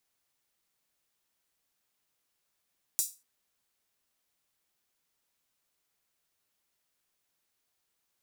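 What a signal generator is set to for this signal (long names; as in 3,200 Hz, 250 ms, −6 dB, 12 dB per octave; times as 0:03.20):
open synth hi-hat length 0.24 s, high-pass 6,900 Hz, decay 0.28 s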